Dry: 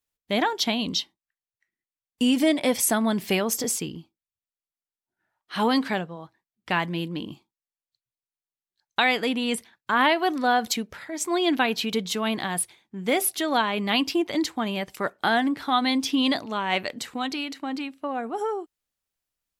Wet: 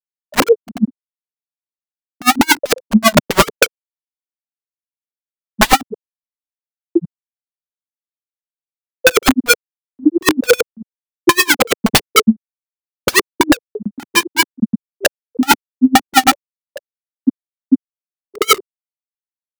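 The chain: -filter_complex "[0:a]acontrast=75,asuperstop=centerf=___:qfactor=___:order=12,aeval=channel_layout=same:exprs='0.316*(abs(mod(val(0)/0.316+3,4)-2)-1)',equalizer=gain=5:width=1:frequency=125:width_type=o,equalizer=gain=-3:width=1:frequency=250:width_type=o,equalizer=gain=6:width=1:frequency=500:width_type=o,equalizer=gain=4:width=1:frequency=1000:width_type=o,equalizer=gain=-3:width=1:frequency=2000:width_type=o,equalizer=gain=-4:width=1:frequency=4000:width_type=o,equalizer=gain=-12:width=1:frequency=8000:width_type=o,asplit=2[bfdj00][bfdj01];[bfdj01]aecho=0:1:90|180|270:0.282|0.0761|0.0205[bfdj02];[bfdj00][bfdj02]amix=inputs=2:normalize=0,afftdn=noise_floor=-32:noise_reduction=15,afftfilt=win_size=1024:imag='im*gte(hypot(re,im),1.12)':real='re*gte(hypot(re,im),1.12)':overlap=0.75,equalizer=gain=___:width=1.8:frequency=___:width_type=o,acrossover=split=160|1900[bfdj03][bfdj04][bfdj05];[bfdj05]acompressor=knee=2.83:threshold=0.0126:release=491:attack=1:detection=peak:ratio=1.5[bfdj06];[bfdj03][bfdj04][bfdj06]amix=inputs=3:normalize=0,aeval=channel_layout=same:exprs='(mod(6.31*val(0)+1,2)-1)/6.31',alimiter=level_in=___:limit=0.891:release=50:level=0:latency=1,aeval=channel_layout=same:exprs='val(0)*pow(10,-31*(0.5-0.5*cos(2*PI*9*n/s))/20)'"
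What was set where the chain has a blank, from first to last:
1000, 0.83, 9.5, 1000, 14.1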